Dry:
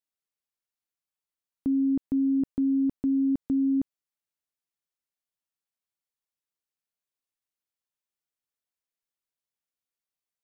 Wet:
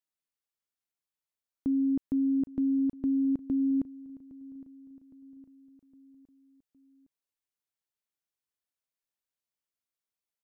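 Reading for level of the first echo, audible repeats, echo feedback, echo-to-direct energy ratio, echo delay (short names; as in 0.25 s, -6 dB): -19.5 dB, 3, 52%, -18.0 dB, 0.812 s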